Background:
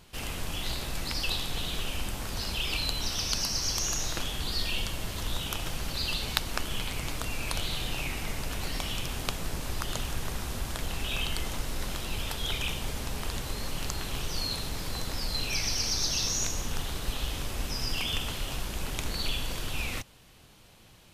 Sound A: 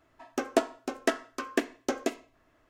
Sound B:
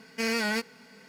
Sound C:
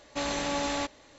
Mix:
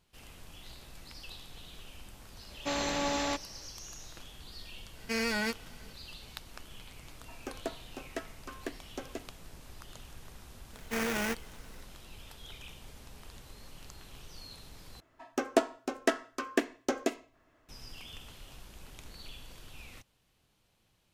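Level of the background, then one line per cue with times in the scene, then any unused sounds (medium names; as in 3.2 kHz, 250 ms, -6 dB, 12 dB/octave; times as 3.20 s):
background -16.5 dB
2.50 s: add C -1.5 dB
4.91 s: add B -3.5 dB, fades 0.10 s
7.09 s: add A -12 dB + three bands compressed up and down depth 40%
10.73 s: add B -4 dB + sample-rate reducer 4.1 kHz, jitter 20%
15.00 s: replace with A -1 dB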